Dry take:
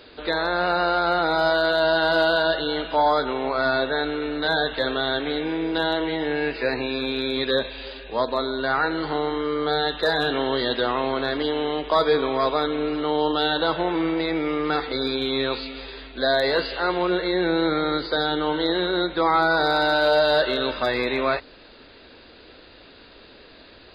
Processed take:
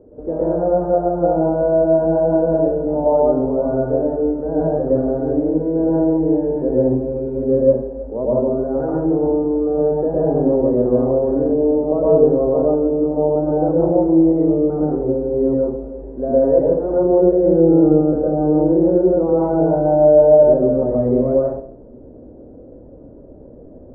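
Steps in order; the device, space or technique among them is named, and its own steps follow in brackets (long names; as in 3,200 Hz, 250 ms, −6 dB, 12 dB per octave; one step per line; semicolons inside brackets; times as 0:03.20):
next room (low-pass filter 540 Hz 24 dB per octave; convolution reverb RT60 0.55 s, pre-delay 107 ms, DRR −5.5 dB)
0:04.52–0:06.14: high-shelf EQ 4,000 Hz +11.5 dB
level +5 dB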